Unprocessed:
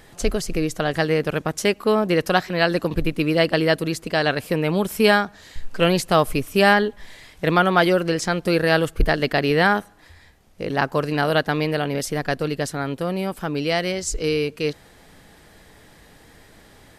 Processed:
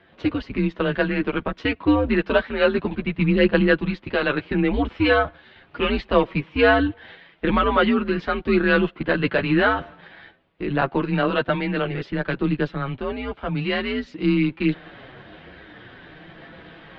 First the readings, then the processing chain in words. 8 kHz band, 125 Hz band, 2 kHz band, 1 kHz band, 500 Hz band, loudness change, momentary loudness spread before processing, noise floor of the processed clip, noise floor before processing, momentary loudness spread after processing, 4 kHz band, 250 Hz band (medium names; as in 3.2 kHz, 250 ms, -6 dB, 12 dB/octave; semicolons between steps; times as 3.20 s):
under -30 dB, -1.0 dB, -1.0 dB, -3.0 dB, -1.5 dB, -1.0 dB, 8 LU, -53 dBFS, -50 dBFS, 9 LU, -4.5 dB, +2.0 dB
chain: reverse; upward compressor, threshold -30 dBFS; reverse; waveshaping leveller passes 1; chorus voices 4, 0.25 Hz, delay 10 ms, depth 3.8 ms; mistuned SSB -130 Hz 220–3600 Hz